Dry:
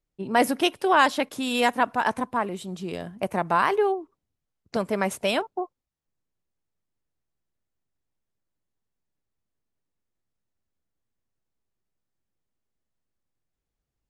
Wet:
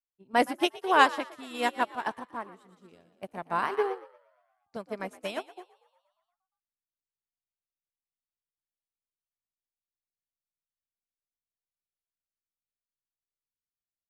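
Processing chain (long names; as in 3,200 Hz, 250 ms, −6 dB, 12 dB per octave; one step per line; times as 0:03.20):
echo with shifted repeats 118 ms, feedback 63%, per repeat +57 Hz, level −8.5 dB
expander for the loud parts 2.5 to 1, over −34 dBFS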